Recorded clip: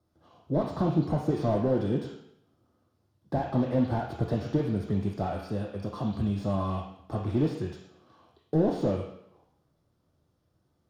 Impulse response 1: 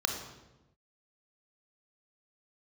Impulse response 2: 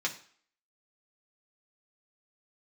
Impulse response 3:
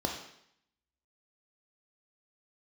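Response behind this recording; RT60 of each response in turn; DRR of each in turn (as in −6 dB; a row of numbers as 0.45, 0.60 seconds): 3; 1.0, 0.50, 0.70 seconds; 4.0, −1.5, 1.5 decibels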